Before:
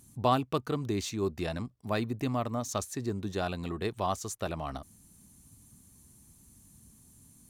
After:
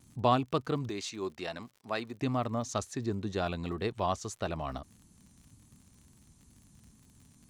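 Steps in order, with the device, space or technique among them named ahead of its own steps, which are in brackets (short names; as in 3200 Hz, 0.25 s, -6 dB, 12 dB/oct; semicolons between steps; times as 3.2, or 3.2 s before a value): 0.89–2.22 HPF 570 Hz 6 dB/oct; lo-fi chain (LPF 6500 Hz 12 dB/oct; wow and flutter; crackle 58/s -48 dBFS)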